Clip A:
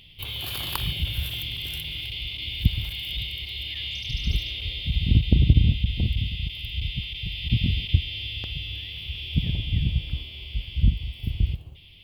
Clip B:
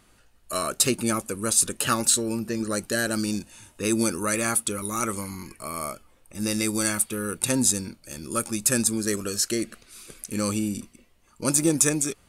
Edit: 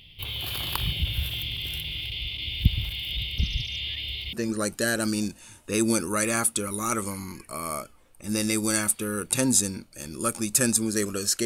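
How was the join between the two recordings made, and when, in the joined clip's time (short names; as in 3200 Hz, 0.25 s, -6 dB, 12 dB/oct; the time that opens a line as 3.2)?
clip A
3.38–4.33 reverse
4.33 switch to clip B from 2.44 s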